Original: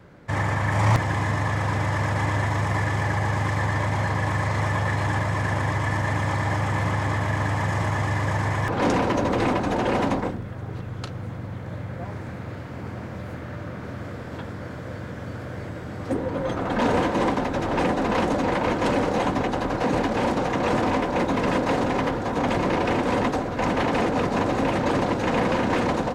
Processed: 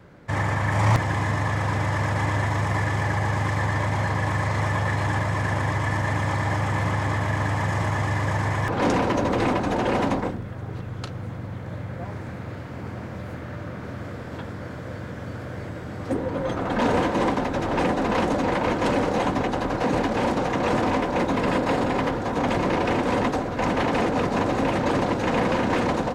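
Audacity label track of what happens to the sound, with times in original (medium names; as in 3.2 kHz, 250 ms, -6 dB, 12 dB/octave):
21.370000	22.010000	band-stop 6 kHz, Q 13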